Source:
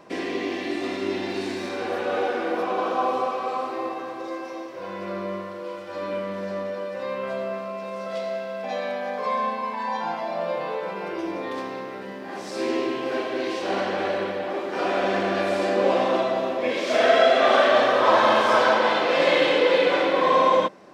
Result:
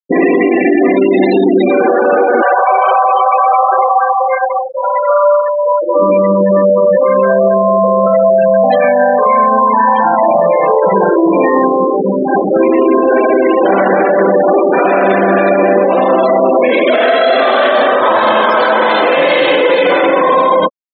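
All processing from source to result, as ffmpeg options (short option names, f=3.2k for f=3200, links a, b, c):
-filter_complex "[0:a]asettb=1/sr,asplit=3[a][b][c];[a]atrim=end=2.424[d];[b]atrim=start=2.42:end=5.82,asetpts=PTS-STARTPTS,afade=t=in:d=0.004:c=qsin,afade=t=out:st=3.396:d=0.004:c=qsin,highpass=f=570:w=0.5412,highpass=f=570:w=1.3066,equalizer=f=3k:w=5.8:g=3.5,aecho=1:1:5.2:0.57,atrim=end_sample=149940[e];[c]atrim=start=5.816[f];[d][e]acrossfade=d=0.004:c1=hsin:c2=qsin[g];[g][f]acrossfade=d=0.004:c1=qsin:c2=hsin,asettb=1/sr,asplit=3[h][i][j];[h]atrim=end=19.094[k];[i]atrim=start=19.09:end=20.29,asetpts=PTS-STARTPTS,afade=t=in:d=0.004:c=qsin,afade=t=out:st=1.196:d=0.004:c=qsin,highshelf=f=7.5k:g=-7.5,bandreject=f=60:t=h:w=6,bandreject=f=120:t=h:w=6,bandreject=f=180:t=h:w=6,bandreject=f=240:t=h:w=6,bandreject=f=300:t=h:w=6,bandreject=f=360:t=h:w=6,bandreject=f=420:t=h:w=6,bandreject=f=480:t=h:w=6[l];[j]atrim=start=20.286[m];[k][l]acrossfade=d=0.004:c1=hsin:c2=qsin[n];[n][m]acrossfade=d=0.004:c1=qsin:c2=hsin,afftfilt=real='re*gte(hypot(re,im),0.0562)':imag='im*gte(hypot(re,im),0.0562)':win_size=1024:overlap=0.75,acompressor=threshold=-27dB:ratio=6,alimiter=level_in=26dB:limit=-1dB:release=50:level=0:latency=1,volume=-1dB"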